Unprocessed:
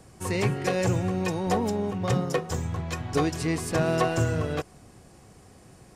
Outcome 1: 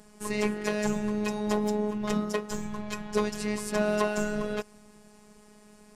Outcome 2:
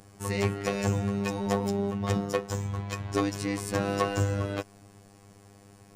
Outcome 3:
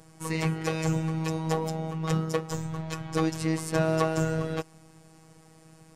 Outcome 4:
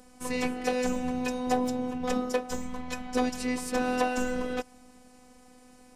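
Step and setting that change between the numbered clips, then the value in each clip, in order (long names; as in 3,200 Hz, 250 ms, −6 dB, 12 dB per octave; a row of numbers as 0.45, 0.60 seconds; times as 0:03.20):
phases set to zero, frequency: 210, 100, 160, 250 Hertz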